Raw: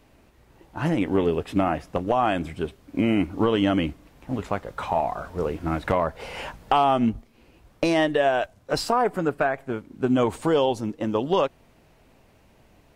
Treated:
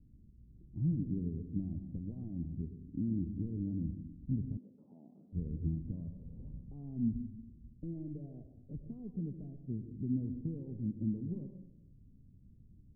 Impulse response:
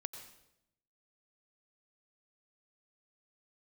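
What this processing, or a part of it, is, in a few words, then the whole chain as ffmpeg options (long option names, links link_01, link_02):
club heard from the street: -filter_complex "[0:a]alimiter=limit=-20dB:level=0:latency=1:release=417,lowpass=frequency=220:width=0.5412,lowpass=frequency=220:width=1.3066[link_01];[1:a]atrim=start_sample=2205[link_02];[link_01][link_02]afir=irnorm=-1:irlink=0,asettb=1/sr,asplit=3[link_03][link_04][link_05];[link_03]atrim=end=4.574[link_06];[link_04]atrim=start=4.57:end=5.33,asetpts=PTS-STARTPTS,afade=type=in:duration=0.004:curve=qsin,afade=type=out:start_time=0.756:duration=0.004:curve=qsin,highpass=frequency=250:width=0.5412,highpass=frequency=250:width=1.3066[link_07];[link_05]atrim=start=5.326[link_08];[link_06][link_07]acrossfade=duration=0.004:curve1=hsin:curve2=qsin[link_09];[link_09][link_08]acrossfade=duration=0.004:curve1=qsin:curve2=hsin,volume=3dB"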